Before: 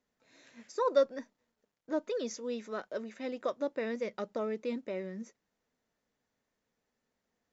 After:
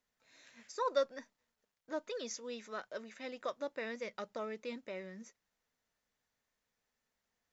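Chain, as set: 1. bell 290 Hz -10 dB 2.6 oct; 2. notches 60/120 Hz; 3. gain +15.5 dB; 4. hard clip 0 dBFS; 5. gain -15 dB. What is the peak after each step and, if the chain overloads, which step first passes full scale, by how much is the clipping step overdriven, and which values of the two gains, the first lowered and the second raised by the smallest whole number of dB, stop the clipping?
-20.0, -20.0, -4.5, -4.5, -19.5 dBFS; no overload

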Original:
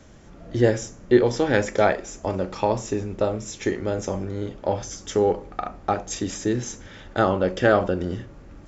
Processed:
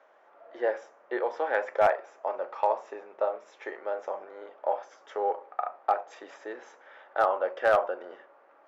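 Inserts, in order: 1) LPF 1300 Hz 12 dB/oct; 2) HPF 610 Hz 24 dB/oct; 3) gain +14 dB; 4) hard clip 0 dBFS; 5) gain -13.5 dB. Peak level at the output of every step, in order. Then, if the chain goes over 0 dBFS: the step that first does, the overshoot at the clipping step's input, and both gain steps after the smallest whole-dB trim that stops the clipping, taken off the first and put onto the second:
-5.5, -9.5, +4.5, 0.0, -13.5 dBFS; step 3, 4.5 dB; step 3 +9 dB, step 5 -8.5 dB

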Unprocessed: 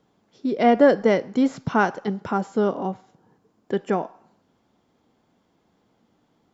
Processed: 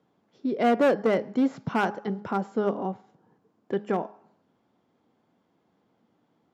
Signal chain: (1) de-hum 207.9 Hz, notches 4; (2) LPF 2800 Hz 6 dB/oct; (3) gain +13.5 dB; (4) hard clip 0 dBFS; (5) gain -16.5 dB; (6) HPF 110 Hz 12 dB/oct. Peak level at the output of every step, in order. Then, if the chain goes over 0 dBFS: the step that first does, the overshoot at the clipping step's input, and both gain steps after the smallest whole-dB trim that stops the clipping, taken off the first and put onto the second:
-5.0, -5.0, +8.5, 0.0, -16.5, -12.5 dBFS; step 3, 8.5 dB; step 3 +4.5 dB, step 5 -7.5 dB

